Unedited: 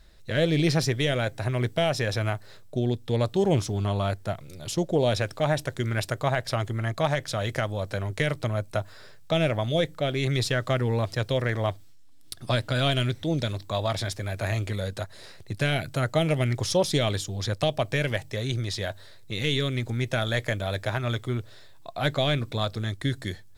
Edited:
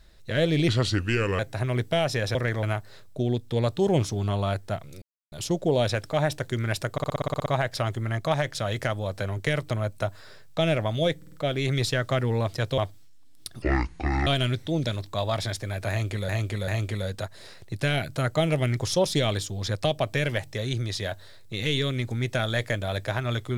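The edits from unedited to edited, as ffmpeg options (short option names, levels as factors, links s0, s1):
-filter_complex "[0:a]asplit=23[s0][s1][s2][s3][s4][s5][s6][s7][s8][s9][s10][s11][s12][s13][s14][s15][s16][s17][s18][s19][s20][s21][s22];[s0]atrim=end=0.684[s23];[s1]atrim=start=0.68:end=1.24,asetpts=PTS-STARTPTS,asetrate=34839,aresample=44100[s24];[s2]atrim=start=1.236:end=2.202[s25];[s3]atrim=start=11.358:end=11.642[s26];[s4]atrim=start=2.198:end=4.59,asetpts=PTS-STARTPTS,afade=t=out:st=2.388:d=0.004:c=hsin,apad=pad_dur=0.3[s27];[s5]atrim=start=4.59:end=6.252,asetpts=PTS-STARTPTS,afade=t=in:d=0.004:c=hsin[s28];[s6]atrim=start=6.188:end=6.252[s29];[s7]atrim=start=6.188:end=6.252[s30];[s8]atrim=start=6.188:end=6.252[s31];[s9]atrim=start=6.188:end=6.252[s32];[s10]atrim=start=6.188:end=6.252[s33];[s11]atrim=start=6.188:end=6.252[s34];[s12]atrim=start=6.188:end=6.252[s35];[s13]atrim=start=6.188:end=6.252[s36];[s14]atrim=start=6.188:end=9.952[s37];[s15]atrim=start=9.898:end=9.952[s38];[s16]atrim=start=9.898:end=9.952[s39];[s17]atrim=start=9.898:end=11.362[s40];[s18]atrim=start=11.638:end=12.484[s41];[s19]atrim=start=12.48:end=12.83,asetpts=PTS-STARTPTS,asetrate=23814,aresample=44100,atrim=end_sample=28583,asetpts=PTS-STARTPTS[s42];[s20]atrim=start=12.826:end=14.852[s43];[s21]atrim=start=14.458:end=14.852[s44];[s22]atrim=start=14.458[s45];[s23][s24]acrossfade=d=0.004:c1=hsin:c2=hsin[s46];[s46][s25]acrossfade=d=0.004:c1=hsin:c2=hsin[s47];[s47][s26]acrossfade=d=0.004:c1=hsin:c2=hsin[s48];[s27][s28]concat=n=2:v=0:a=1[s49];[s48][s49]acrossfade=d=0.004:c1=hsin:c2=hsin[s50];[s50][s29]acrossfade=d=0.004:c1=hsin:c2=hsin[s51];[s51][s30]acrossfade=d=0.004:c1=hsin:c2=hsin[s52];[s52][s31]acrossfade=d=0.004:c1=hsin:c2=hsin[s53];[s53][s32]acrossfade=d=0.004:c1=hsin:c2=hsin[s54];[s54][s33]acrossfade=d=0.004:c1=hsin:c2=hsin[s55];[s55][s34]acrossfade=d=0.004:c1=hsin:c2=hsin[s56];[s56][s35]acrossfade=d=0.004:c1=hsin:c2=hsin[s57];[s57][s36]acrossfade=d=0.004:c1=hsin:c2=hsin[s58];[s58][s37]acrossfade=d=0.004:c1=hsin:c2=hsin[s59];[s59][s38]acrossfade=d=0.004:c1=hsin:c2=hsin[s60];[s60][s39]acrossfade=d=0.004:c1=hsin:c2=hsin[s61];[s61][s40]acrossfade=d=0.004:c1=hsin:c2=hsin[s62];[s62][s41]acrossfade=d=0.004:c1=hsin:c2=hsin[s63];[s63][s42]acrossfade=d=0.004:c1=hsin:c2=hsin[s64];[s64][s43]acrossfade=d=0.004:c1=hsin:c2=hsin[s65];[s65][s44]acrossfade=d=0.004:c1=hsin:c2=hsin[s66];[s66][s45]acrossfade=d=0.004:c1=hsin:c2=hsin"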